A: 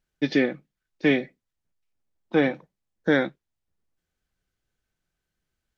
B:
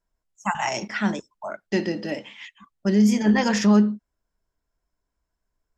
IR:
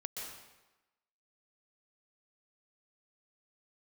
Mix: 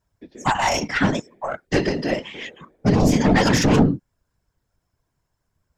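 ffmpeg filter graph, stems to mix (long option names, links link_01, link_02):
-filter_complex "[0:a]acrossover=split=230|990[link_01][link_02][link_03];[link_01]acompressor=threshold=-37dB:ratio=4[link_04];[link_02]acompressor=threshold=-23dB:ratio=4[link_05];[link_03]acompressor=threshold=-45dB:ratio=4[link_06];[link_04][link_05][link_06]amix=inputs=3:normalize=0,volume=-13.5dB,asplit=2[link_07][link_08];[link_08]volume=-3.5dB[link_09];[1:a]aeval=exprs='0.447*(cos(1*acos(clip(val(0)/0.447,-1,1)))-cos(1*PI/2))+0.2*(cos(2*acos(clip(val(0)/0.447,-1,1)))-cos(2*PI/2))+0.224*(cos(5*acos(clip(val(0)/0.447,-1,1)))-cos(5*PI/2))+0.0794*(cos(6*acos(clip(val(0)/0.447,-1,1)))-cos(6*PI/2))':channel_layout=same,volume=1.5dB[link_10];[2:a]atrim=start_sample=2205[link_11];[link_09][link_11]afir=irnorm=-1:irlink=0[link_12];[link_07][link_10][link_12]amix=inputs=3:normalize=0,afftfilt=real='hypot(re,im)*cos(2*PI*random(0))':imag='hypot(re,im)*sin(2*PI*random(1))':win_size=512:overlap=0.75"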